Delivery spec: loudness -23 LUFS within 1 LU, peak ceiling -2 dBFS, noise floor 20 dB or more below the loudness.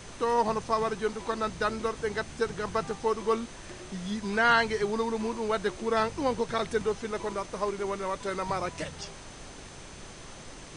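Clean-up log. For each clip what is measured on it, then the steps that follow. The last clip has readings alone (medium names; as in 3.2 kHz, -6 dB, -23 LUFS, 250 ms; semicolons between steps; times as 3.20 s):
steady tone 6.2 kHz; tone level -56 dBFS; noise floor -46 dBFS; noise floor target -50 dBFS; loudness -29.5 LUFS; peak level -13.0 dBFS; loudness target -23.0 LUFS
-> band-stop 6.2 kHz, Q 30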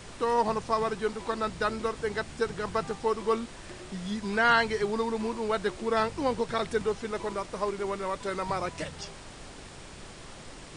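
steady tone not found; noise floor -46 dBFS; noise floor target -50 dBFS
-> noise print and reduce 6 dB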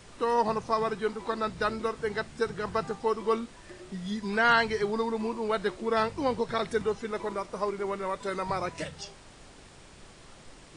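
noise floor -52 dBFS; loudness -30.0 LUFS; peak level -13.0 dBFS; loudness target -23.0 LUFS
-> trim +7 dB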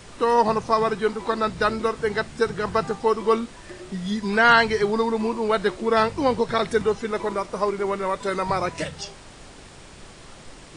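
loudness -23.0 LUFS; peak level -6.0 dBFS; noise floor -45 dBFS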